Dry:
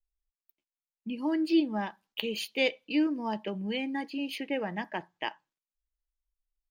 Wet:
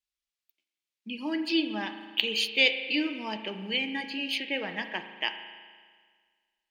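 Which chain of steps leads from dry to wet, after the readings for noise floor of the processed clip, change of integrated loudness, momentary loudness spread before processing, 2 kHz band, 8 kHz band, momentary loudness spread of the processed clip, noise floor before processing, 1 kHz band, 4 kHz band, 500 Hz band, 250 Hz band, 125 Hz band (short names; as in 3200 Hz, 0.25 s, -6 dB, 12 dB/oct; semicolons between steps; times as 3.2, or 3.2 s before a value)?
under -85 dBFS, +3.0 dB, 11 LU, +7.0 dB, +4.0 dB, 13 LU, under -85 dBFS, -2.0 dB, +9.0 dB, -2.0 dB, -3.0 dB, n/a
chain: weighting filter D; spring tank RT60 1.7 s, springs 37 ms, chirp 40 ms, DRR 8 dB; gain -2.5 dB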